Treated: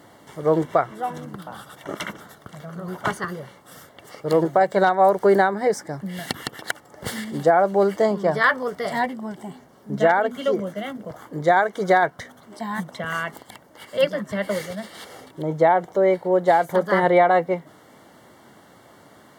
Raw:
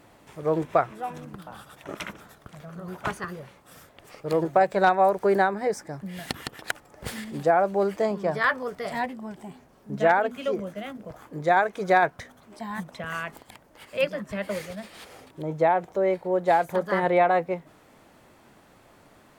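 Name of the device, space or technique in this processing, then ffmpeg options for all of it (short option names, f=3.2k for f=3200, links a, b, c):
PA system with an anti-feedback notch: -af "highpass=100,asuperstop=centerf=2500:order=20:qfactor=6.4,alimiter=limit=-12dB:level=0:latency=1:release=251,volume=5.5dB"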